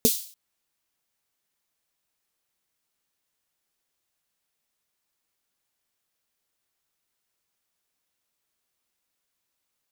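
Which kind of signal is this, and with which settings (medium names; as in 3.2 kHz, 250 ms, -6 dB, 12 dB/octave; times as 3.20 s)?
snare drum length 0.29 s, tones 240 Hz, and 440 Hz, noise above 3.5 kHz, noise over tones -3 dB, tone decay 0.08 s, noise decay 0.47 s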